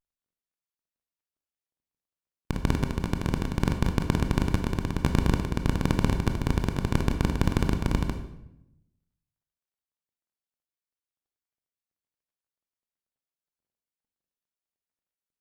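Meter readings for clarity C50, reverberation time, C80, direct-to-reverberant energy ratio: 8.5 dB, 0.85 s, 11.5 dB, 6.0 dB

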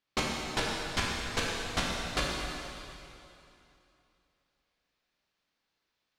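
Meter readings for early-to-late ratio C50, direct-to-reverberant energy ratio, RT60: −1.0 dB, −4.5 dB, 2.8 s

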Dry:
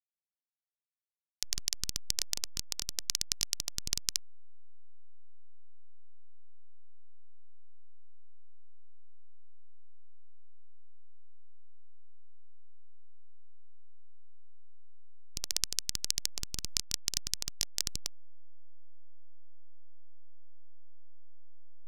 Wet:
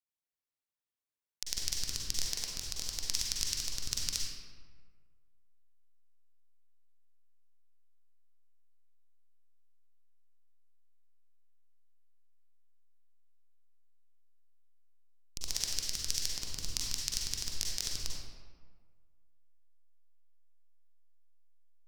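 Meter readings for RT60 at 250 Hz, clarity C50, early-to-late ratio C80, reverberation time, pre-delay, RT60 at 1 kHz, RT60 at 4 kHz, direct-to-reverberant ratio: 1.6 s, −1.5 dB, 1.0 dB, 1.6 s, 39 ms, 1.6 s, 0.90 s, −3.0 dB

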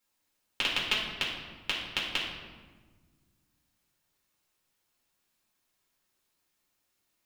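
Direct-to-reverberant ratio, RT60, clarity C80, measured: −5.0 dB, 1.4 s, 5.0 dB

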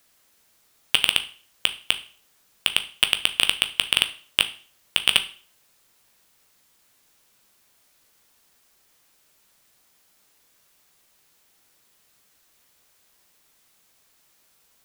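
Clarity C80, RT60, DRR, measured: 20.0 dB, 0.45 s, 8.0 dB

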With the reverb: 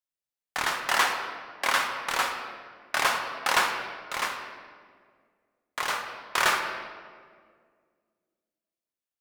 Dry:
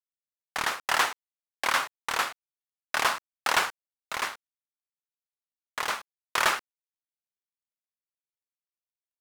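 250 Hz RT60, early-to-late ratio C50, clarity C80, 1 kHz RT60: 2.5 s, 5.5 dB, 7.0 dB, 1.7 s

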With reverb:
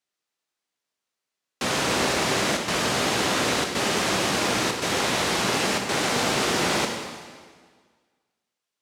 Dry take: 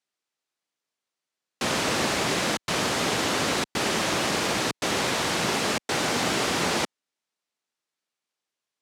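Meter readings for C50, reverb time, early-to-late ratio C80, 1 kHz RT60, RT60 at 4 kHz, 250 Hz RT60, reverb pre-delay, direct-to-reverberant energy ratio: 4.0 dB, 1.7 s, 5.5 dB, 1.7 s, 1.5 s, 1.7 s, 8 ms, 2.5 dB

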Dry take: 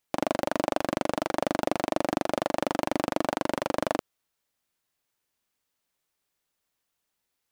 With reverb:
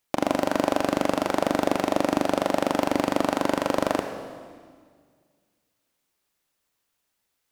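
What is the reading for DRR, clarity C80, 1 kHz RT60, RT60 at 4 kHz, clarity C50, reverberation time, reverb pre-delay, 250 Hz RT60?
6.0 dB, 8.0 dB, 1.8 s, 1.7 s, 7.0 dB, 1.8 s, 26 ms, 2.1 s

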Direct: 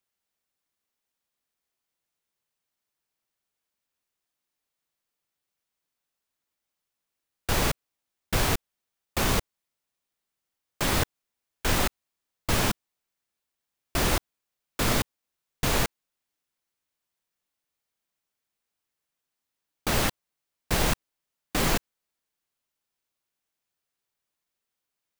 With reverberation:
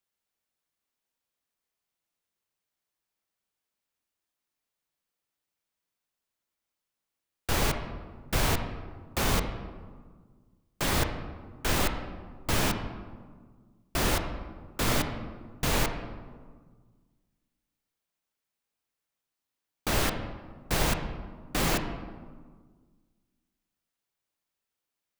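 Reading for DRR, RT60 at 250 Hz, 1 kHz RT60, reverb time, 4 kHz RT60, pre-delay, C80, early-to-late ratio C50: 6.0 dB, 2.1 s, 1.6 s, 1.6 s, 0.85 s, 20 ms, 9.0 dB, 7.5 dB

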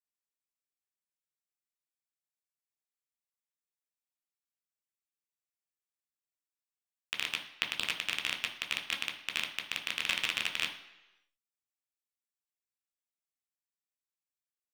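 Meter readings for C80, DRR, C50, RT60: 12.5 dB, 2.0 dB, 10.0 dB, 1.0 s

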